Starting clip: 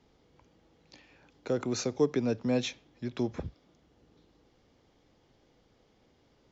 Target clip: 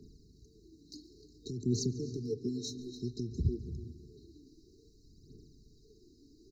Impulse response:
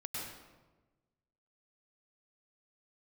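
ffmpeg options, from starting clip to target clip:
-filter_complex "[0:a]asplit=2[a][b];[b]adelay=290,highpass=300,lowpass=3.4k,asoftclip=type=hard:threshold=-24dB,volume=-14dB[c];[a][c]amix=inputs=2:normalize=0,alimiter=level_in=2dB:limit=-24dB:level=0:latency=1:release=365,volume=-2dB,acrossover=split=160[d][e];[e]acompressor=threshold=-37dB:ratio=6[f];[d][f]amix=inputs=2:normalize=0,aphaser=in_gain=1:out_gain=1:delay=3.7:decay=0.68:speed=0.56:type=triangular,asplit=2[g][h];[1:a]atrim=start_sample=2205,highshelf=f=6.2k:g=-7.5,adelay=142[i];[h][i]afir=irnorm=-1:irlink=0,volume=-12.5dB[j];[g][j]amix=inputs=2:normalize=0,afftfilt=real='re*(1-between(b*sr/4096,460,3800))':imag='im*(1-between(b*sr/4096,460,3800))':win_size=4096:overlap=0.75,volume=4.5dB"

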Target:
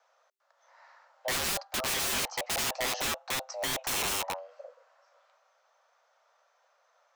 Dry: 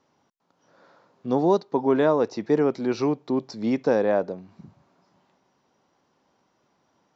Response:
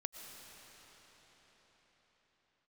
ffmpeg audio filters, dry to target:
-filter_complex "[0:a]afreqshift=390,aeval=exprs='(mod(16.8*val(0)+1,2)-1)/16.8':c=same,asettb=1/sr,asplit=3[a][b][c];[a]atrim=end=2.954[d];[b]atrim=start=2.95:end=4.36,asetpts=PTS-STARTPTS,afade=t=in:d=0.004:c=qsin,afade=t=out:st=1.406:d=0.004:c=qsin,bandreject=f=4.7k:w=11[e];[c]atrim=start=4.356[f];[d][e]acrossfade=d=0.004:c1=hsin:c2=qsin[g];[g][f]acrossfade=d=0.004:c1=qsin:c2=hsin,volume=-1dB"

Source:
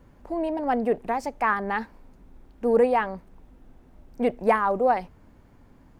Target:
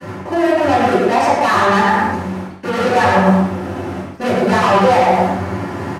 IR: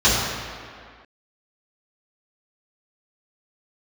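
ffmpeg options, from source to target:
-filter_complex "[0:a]bandreject=f=60:t=h:w=6,bandreject=f=120:t=h:w=6,bandreject=f=180:t=h:w=6,bandreject=f=240:t=h:w=6,asplit=2[a][b];[b]adelay=112,lowpass=f=2k:p=1,volume=-6.5dB,asplit=2[c][d];[d]adelay=112,lowpass=f=2k:p=1,volume=0.22,asplit=2[e][f];[f]adelay=112,lowpass=f=2k:p=1,volume=0.22[g];[a][c][e][g]amix=inputs=4:normalize=0,asplit=2[h][i];[i]acrusher=samples=39:mix=1:aa=0.000001:lfo=1:lforange=62.4:lforate=0.5,volume=-11.5dB[j];[h][j]amix=inputs=2:normalize=0,asplit=2[k][l];[l]highpass=f=720:p=1,volume=29dB,asoftclip=type=tanh:threshold=-6.5dB[m];[k][m]amix=inputs=2:normalize=0,lowpass=f=4.1k:p=1,volume=-6dB,areverse,acompressor=threshold=-27dB:ratio=6,areverse,agate=range=-33dB:threshold=-39dB:ratio=3:detection=peak[n];[1:a]atrim=start_sample=2205,afade=t=out:st=0.31:d=0.01,atrim=end_sample=14112,asetrate=74970,aresample=44100[o];[n][o]afir=irnorm=-1:irlink=0,volume=-4.5dB"

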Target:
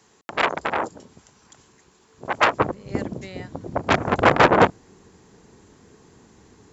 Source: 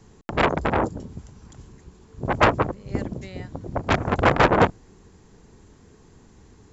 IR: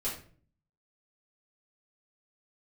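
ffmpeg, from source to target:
-af "asetnsamples=n=441:p=0,asendcmd='2.6 highpass f 180',highpass=f=1k:p=1,volume=3dB"

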